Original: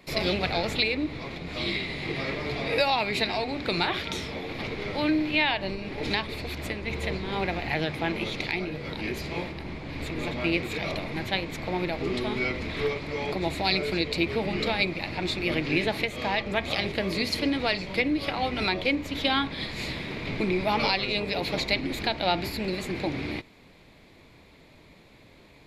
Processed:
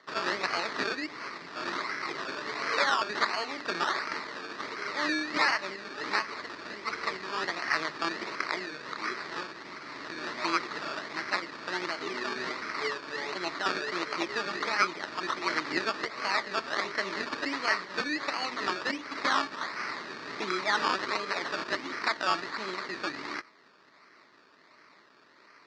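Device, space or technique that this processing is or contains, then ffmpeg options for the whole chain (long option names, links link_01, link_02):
circuit-bent sampling toy: -af "acrusher=samples=17:mix=1:aa=0.000001:lfo=1:lforange=10.2:lforate=1.4,highpass=490,equalizer=frequency=510:width_type=q:width=4:gain=-8,equalizer=frequency=750:width_type=q:width=4:gain=-9,equalizer=frequency=1200:width_type=q:width=4:gain=5,equalizer=frequency=1900:width_type=q:width=4:gain=7,equalizer=frequency=3100:width_type=q:width=4:gain=-6,equalizer=frequency=4400:width_type=q:width=4:gain=7,lowpass=frequency=5300:width=0.5412,lowpass=frequency=5300:width=1.3066"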